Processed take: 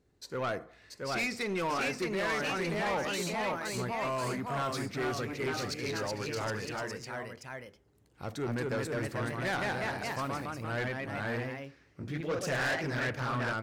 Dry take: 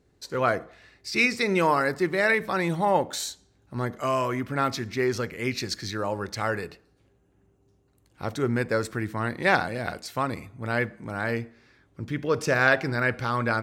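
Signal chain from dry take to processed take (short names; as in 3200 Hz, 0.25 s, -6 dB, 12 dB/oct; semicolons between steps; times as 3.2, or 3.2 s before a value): echoes that change speed 0.696 s, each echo +1 st, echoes 3; soft clip -21.5 dBFS, distortion -10 dB; gain -6 dB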